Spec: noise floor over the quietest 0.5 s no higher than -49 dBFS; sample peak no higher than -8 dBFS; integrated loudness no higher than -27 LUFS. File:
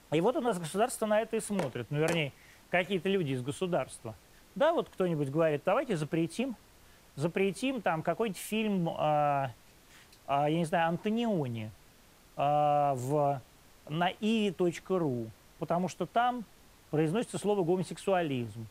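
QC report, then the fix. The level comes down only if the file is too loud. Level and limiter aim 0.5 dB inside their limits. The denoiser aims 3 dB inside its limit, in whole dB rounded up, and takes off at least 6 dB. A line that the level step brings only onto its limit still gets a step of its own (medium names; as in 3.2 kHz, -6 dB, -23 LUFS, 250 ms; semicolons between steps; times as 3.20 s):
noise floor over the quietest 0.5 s -59 dBFS: pass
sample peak -14.5 dBFS: pass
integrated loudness -31.5 LUFS: pass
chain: none needed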